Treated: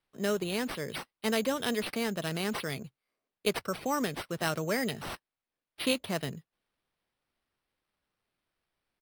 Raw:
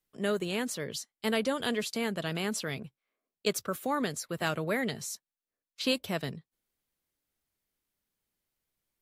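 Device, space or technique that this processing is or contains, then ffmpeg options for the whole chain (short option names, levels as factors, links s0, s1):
crushed at another speed: -af "asetrate=35280,aresample=44100,acrusher=samples=8:mix=1:aa=0.000001,asetrate=55125,aresample=44100"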